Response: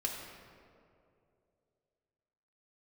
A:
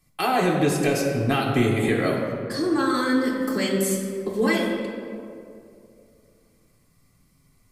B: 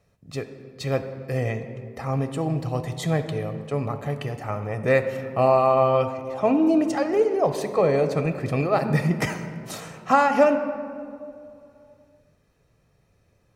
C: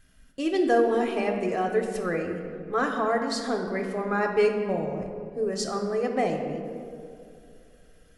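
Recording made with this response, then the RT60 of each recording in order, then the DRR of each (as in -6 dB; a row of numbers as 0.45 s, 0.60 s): A; 2.6 s, 2.6 s, 2.6 s; -3.0 dB, 6.5 dB, 1.5 dB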